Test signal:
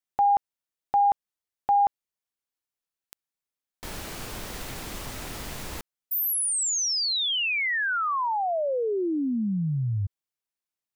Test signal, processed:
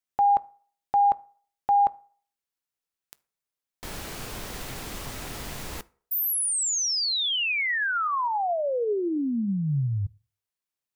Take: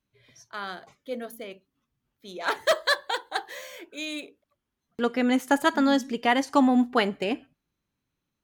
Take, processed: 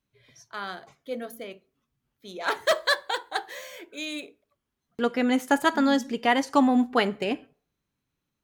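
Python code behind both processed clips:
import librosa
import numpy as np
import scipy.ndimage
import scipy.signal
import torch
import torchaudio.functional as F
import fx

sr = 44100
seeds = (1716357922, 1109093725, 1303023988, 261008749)

y = fx.rev_fdn(x, sr, rt60_s=0.48, lf_ratio=0.8, hf_ratio=0.65, size_ms=42.0, drr_db=16.5)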